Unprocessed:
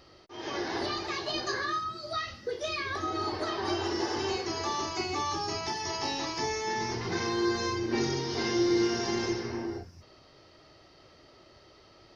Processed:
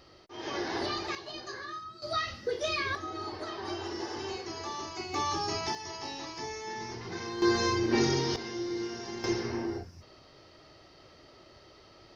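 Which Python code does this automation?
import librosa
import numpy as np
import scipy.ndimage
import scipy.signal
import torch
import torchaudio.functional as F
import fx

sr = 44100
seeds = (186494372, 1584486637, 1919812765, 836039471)

y = fx.gain(x, sr, db=fx.steps((0.0, -0.5), (1.15, -9.0), (2.02, 2.0), (2.95, -6.0), (5.14, 0.5), (5.75, -7.0), (7.42, 3.0), (8.36, -9.0), (9.24, 1.0)))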